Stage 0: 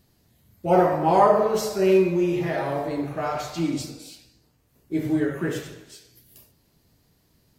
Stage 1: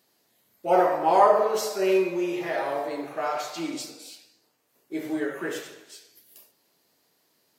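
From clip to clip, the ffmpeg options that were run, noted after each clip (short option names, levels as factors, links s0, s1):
-af "highpass=420"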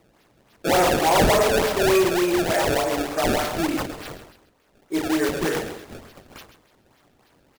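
-filter_complex "[0:a]acrossover=split=130|1900|7500[s0][s1][s2][s3];[s1]asoftclip=type=tanh:threshold=0.0631[s4];[s0][s4][s2][s3]amix=inputs=4:normalize=0,acrusher=samples=25:mix=1:aa=0.000001:lfo=1:lforange=40:lforate=3.4,aecho=1:1:134:0.266,volume=2.66"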